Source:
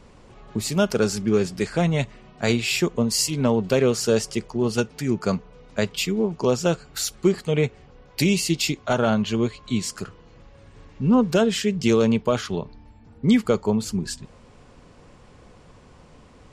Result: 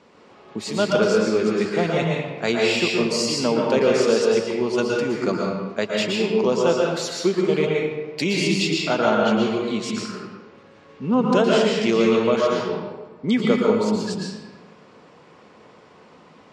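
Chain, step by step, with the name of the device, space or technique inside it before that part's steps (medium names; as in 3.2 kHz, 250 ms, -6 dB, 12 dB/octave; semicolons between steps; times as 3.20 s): supermarket ceiling speaker (band-pass 240–5400 Hz; reverberation RT60 1.3 s, pre-delay 110 ms, DRR -2.5 dB)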